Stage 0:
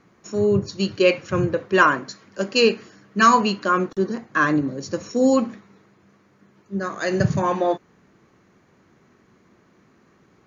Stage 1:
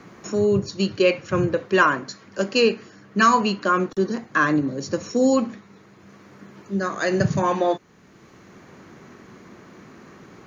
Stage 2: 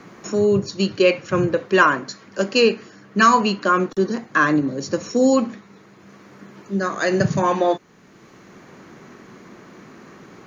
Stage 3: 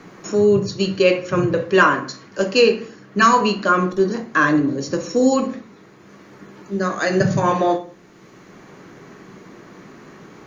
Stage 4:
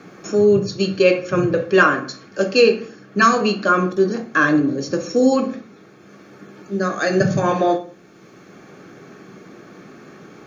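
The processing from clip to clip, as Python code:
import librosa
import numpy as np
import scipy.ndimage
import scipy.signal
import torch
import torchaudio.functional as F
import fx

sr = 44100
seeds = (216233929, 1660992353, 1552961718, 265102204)

y1 = fx.band_squash(x, sr, depth_pct=40)
y2 = fx.peak_eq(y1, sr, hz=77.0, db=-7.5, octaves=0.96)
y2 = y2 * 10.0 ** (2.5 / 20.0)
y3 = fx.room_shoebox(y2, sr, seeds[0], volume_m3=35.0, walls='mixed', distance_m=0.31)
y4 = fx.notch_comb(y3, sr, f0_hz=970.0)
y4 = y4 * 10.0 ** (1.0 / 20.0)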